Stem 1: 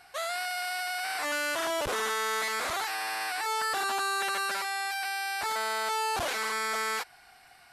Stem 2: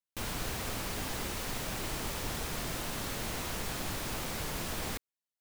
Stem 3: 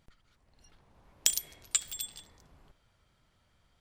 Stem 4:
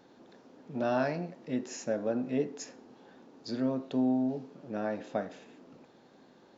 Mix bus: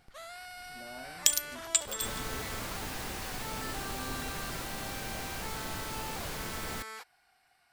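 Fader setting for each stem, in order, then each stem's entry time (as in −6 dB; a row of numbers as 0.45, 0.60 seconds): −13.0, −2.5, +2.0, −19.5 decibels; 0.00, 1.85, 0.00, 0.00 seconds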